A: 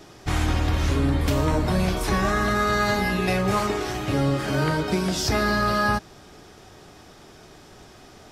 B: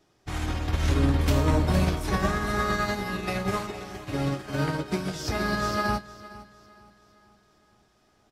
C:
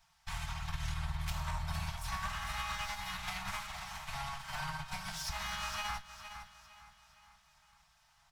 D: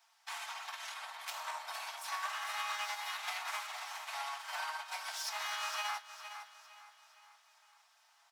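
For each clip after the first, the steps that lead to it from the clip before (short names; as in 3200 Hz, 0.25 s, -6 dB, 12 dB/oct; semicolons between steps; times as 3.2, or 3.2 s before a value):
on a send: feedback echo 0.459 s, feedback 51%, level -7.5 dB; on the sum: upward expander 2.5:1, over -30 dBFS
minimum comb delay 4.5 ms; Chebyshev band-stop 140–820 Hz, order 3; compressor 2.5:1, threshold -40 dBFS, peak gain reduction 12 dB; gain +1 dB
steep high-pass 420 Hz 36 dB/oct; gain +1 dB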